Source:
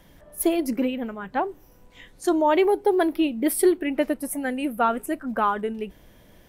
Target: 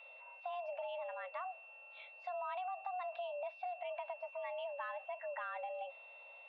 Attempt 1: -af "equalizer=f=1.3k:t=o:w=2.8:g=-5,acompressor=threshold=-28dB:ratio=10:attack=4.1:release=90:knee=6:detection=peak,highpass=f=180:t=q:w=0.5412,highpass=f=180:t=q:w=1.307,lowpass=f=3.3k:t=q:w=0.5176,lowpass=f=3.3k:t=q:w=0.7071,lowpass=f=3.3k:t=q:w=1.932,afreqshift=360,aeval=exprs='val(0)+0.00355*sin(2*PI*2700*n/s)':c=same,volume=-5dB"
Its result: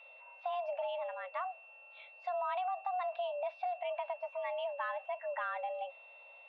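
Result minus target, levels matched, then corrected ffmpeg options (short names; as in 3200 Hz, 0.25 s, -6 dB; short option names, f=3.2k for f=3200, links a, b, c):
compressor: peak gain reduction -6 dB
-af "equalizer=f=1.3k:t=o:w=2.8:g=-5,acompressor=threshold=-34.5dB:ratio=10:attack=4.1:release=90:knee=6:detection=peak,highpass=f=180:t=q:w=0.5412,highpass=f=180:t=q:w=1.307,lowpass=f=3.3k:t=q:w=0.5176,lowpass=f=3.3k:t=q:w=0.7071,lowpass=f=3.3k:t=q:w=1.932,afreqshift=360,aeval=exprs='val(0)+0.00355*sin(2*PI*2700*n/s)':c=same,volume=-5dB"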